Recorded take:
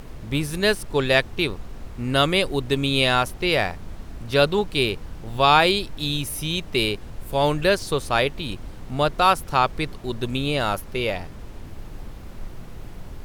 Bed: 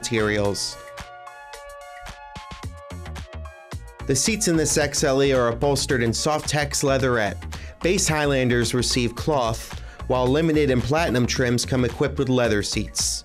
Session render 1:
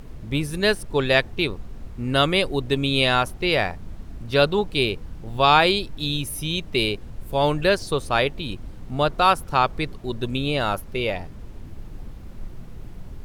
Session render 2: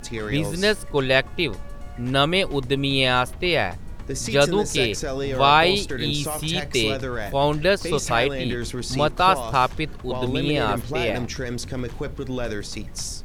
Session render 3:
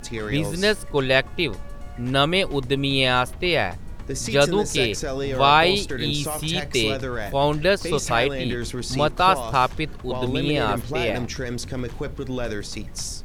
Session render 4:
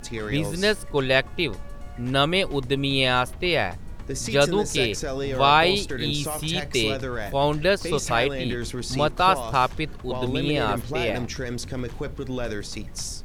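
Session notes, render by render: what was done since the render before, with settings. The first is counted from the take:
noise reduction 6 dB, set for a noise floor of -38 dBFS
add bed -8.5 dB
no audible change
trim -1.5 dB

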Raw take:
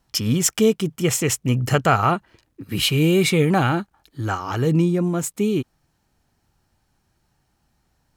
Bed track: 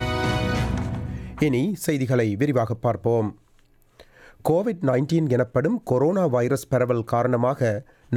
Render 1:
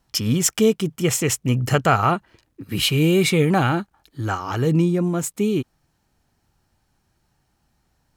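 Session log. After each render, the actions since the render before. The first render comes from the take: no audible change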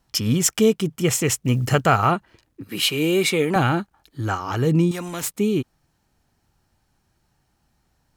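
1.07–2.08 s: companded quantiser 8-bit; 2.68–3.56 s: high-pass 270 Hz; 4.91–5.31 s: spectrum-flattening compressor 2:1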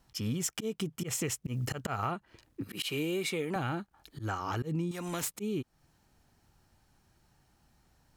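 slow attack 190 ms; compression 5:1, threshold -32 dBFS, peak gain reduction 16 dB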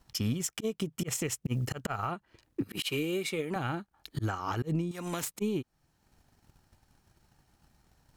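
transient shaper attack +11 dB, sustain -4 dB; peak limiter -22 dBFS, peak gain reduction 10.5 dB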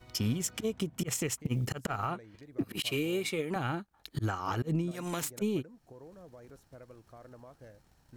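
add bed track -31 dB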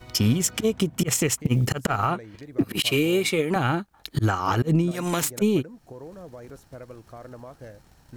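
trim +10 dB

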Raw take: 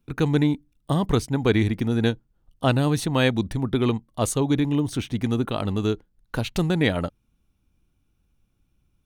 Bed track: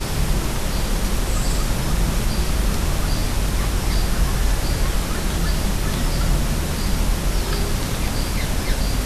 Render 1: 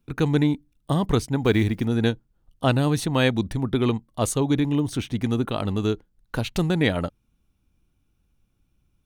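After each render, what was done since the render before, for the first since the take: 1.45–1.86 s: block-companded coder 7-bit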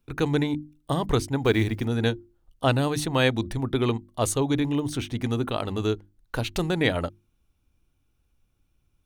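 peaking EQ 190 Hz -6 dB 0.77 oct; hum notches 50/100/150/200/250/300/350 Hz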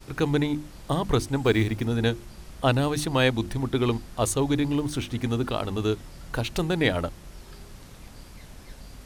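add bed track -23 dB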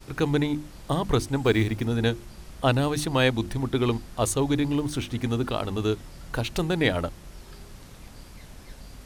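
no audible change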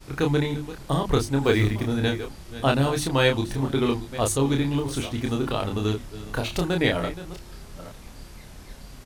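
chunks repeated in reverse 464 ms, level -14 dB; doubling 29 ms -4 dB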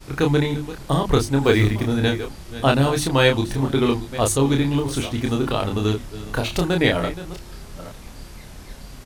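trim +4 dB

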